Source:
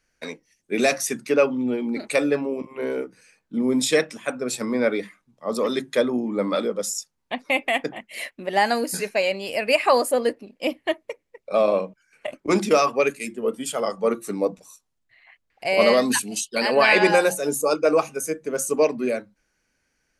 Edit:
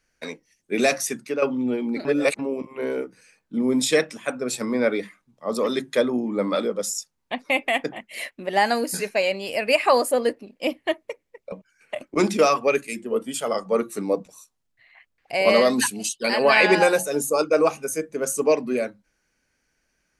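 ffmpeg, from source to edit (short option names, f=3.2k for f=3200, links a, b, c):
-filter_complex "[0:a]asplit=5[a][b][c][d][e];[a]atrim=end=1.42,asetpts=PTS-STARTPTS,afade=t=out:st=1:d=0.42:silence=0.354813[f];[b]atrim=start=1.42:end=2.052,asetpts=PTS-STARTPTS,afade=t=in:d=0.004:c=hsin:silence=0.354813[g];[c]atrim=start=2.048:end=2.392,asetpts=PTS-STARTPTS,areverse[h];[d]atrim=start=2.388:end=11.522[i];[e]atrim=start=11.838[j];[f][g]concat=n=2:v=0:a=1[k];[k][h]acrossfade=d=0.004:c1=hsin:c2=hsin[l];[l][i]acrossfade=d=0.004:c1=hsin:c2=hsin[m];[m][j]acrossfade=d=0.004:c1=hsin:c2=hsin"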